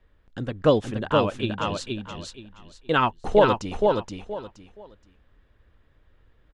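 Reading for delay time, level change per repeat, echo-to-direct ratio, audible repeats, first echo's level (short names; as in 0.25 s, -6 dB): 0.473 s, -12.5 dB, -3.0 dB, 3, -3.5 dB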